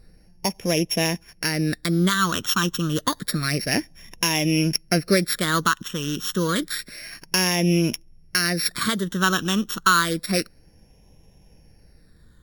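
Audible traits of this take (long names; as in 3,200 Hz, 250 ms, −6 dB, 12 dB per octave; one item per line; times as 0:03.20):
a buzz of ramps at a fixed pitch in blocks of 8 samples
phaser sweep stages 8, 0.29 Hz, lowest notch 650–1,300 Hz
Ogg Vorbis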